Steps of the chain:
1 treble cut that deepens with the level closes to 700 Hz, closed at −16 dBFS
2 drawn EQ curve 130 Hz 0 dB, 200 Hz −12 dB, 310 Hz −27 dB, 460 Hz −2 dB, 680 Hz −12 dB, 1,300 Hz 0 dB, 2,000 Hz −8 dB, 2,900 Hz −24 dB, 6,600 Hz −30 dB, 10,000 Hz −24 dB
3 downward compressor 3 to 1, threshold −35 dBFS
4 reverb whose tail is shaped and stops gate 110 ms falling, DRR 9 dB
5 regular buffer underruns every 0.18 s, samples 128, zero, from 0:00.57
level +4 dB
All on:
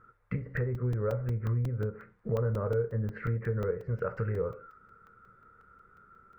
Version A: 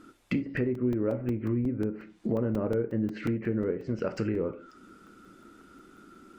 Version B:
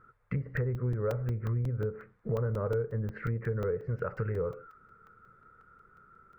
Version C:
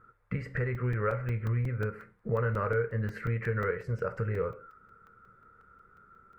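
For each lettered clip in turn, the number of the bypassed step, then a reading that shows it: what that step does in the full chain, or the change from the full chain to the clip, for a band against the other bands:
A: 2, 250 Hz band +11.0 dB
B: 4, change in momentary loudness spread −1 LU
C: 1, 2 kHz band +7.0 dB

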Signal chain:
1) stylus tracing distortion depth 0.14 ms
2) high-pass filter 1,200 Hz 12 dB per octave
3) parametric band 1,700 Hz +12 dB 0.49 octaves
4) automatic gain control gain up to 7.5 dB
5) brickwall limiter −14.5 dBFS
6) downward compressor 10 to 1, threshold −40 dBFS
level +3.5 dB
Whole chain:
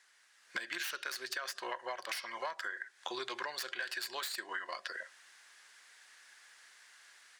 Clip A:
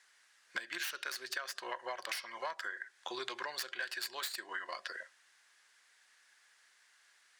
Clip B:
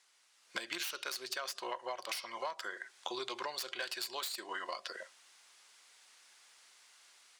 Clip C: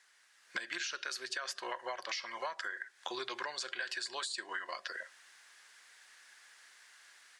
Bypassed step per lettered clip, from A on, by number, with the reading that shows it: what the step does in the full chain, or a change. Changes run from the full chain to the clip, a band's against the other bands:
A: 4, change in momentary loudness spread −14 LU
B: 3, 2 kHz band −5.0 dB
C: 1, 8 kHz band +1.5 dB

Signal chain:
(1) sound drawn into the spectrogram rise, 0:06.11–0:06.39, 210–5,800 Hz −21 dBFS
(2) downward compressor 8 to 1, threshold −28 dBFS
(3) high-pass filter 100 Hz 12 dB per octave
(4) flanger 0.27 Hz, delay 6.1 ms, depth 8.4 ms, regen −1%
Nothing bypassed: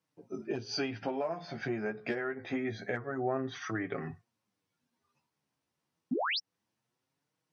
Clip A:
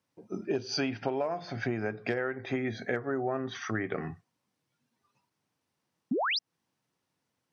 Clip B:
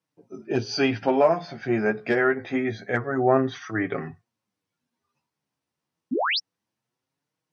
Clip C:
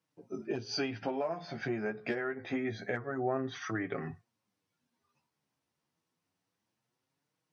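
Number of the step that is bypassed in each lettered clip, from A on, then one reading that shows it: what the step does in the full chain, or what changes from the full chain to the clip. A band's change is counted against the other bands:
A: 4, change in integrated loudness +3.0 LU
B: 2, change in crest factor +2.0 dB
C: 1, 4 kHz band −3.5 dB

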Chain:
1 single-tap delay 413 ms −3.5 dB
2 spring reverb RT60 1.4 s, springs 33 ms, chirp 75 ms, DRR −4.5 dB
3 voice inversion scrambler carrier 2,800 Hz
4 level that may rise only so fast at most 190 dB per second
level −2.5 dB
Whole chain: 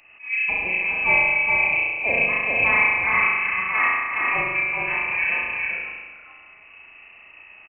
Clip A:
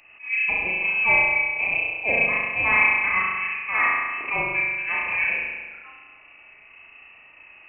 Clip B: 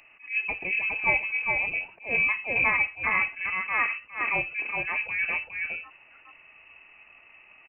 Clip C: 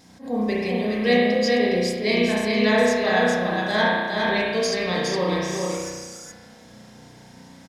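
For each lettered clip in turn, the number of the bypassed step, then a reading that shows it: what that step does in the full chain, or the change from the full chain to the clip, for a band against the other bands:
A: 1, change in crest factor +2.0 dB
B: 2, change in crest factor +2.5 dB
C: 3, 2 kHz band −19.5 dB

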